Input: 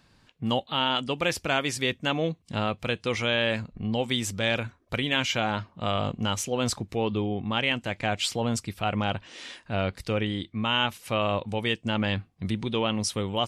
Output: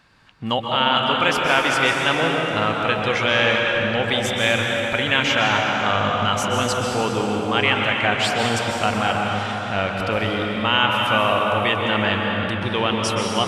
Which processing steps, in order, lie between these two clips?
parametric band 1,500 Hz +9 dB 2.4 octaves
dense smooth reverb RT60 4.3 s, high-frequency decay 0.6×, pre-delay 115 ms, DRR −1 dB

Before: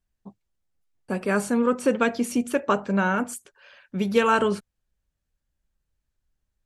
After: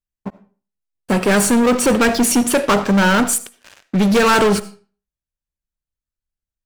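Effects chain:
high-shelf EQ 5,200 Hz +5 dB
leveller curve on the samples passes 5
on a send: convolution reverb RT60 0.40 s, pre-delay 35 ms, DRR 15.5 dB
on the sum: level −2.5 dB

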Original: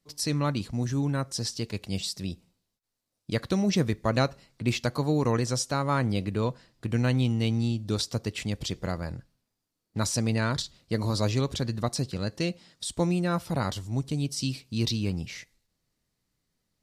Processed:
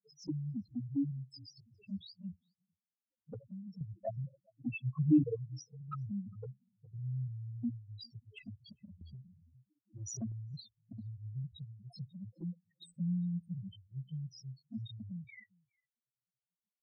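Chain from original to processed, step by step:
spectral peaks only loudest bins 1
high-pass filter 250 Hz 12 dB per octave
high-frequency loss of the air 130 metres
slap from a distant wall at 70 metres, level −29 dB
0:03.36–0:03.81: downward compressor 12 to 1, threshold −45 dBFS, peak gain reduction 13 dB
flanger swept by the level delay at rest 9.8 ms, full sweep at −38.5 dBFS
0:04.74–0:05.24: low-shelf EQ 350 Hz +11.5 dB
0:09.01–0:10.32: every bin compressed towards the loudest bin 2 to 1
level +5 dB

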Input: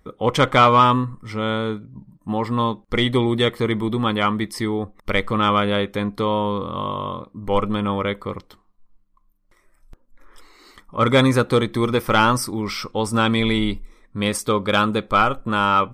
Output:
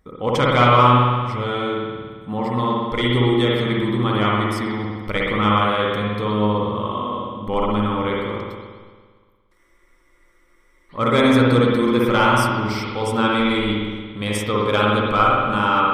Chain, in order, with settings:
spring reverb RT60 1.6 s, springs 57 ms, chirp 75 ms, DRR −4 dB
frozen spectrum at 0:09.59, 1.32 s
level −4 dB

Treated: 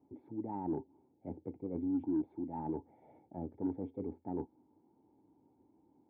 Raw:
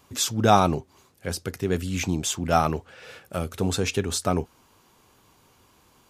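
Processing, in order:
high-pass filter 57 Hz 24 dB per octave
low-shelf EQ 91 Hz −7.5 dB
notch filter 1,100 Hz, Q 5.7
reversed playback
downward compressor 10 to 1, threshold −27 dBFS, peak gain reduction 15 dB
reversed playback
formants moved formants +4 semitones
formant resonators in series u
harmonic generator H 5 −29 dB, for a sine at −26 dBFS
level +2.5 dB

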